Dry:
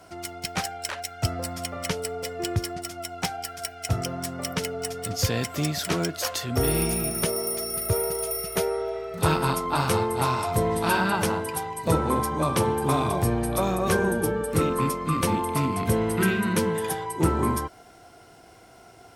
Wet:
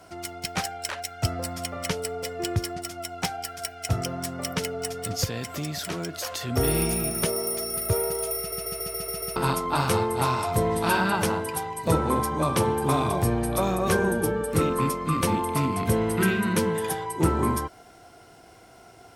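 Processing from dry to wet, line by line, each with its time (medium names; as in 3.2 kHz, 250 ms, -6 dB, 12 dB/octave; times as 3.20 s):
5.24–6.41 s: compression 2.5:1, threshold -29 dBFS
8.38 s: stutter in place 0.14 s, 7 plays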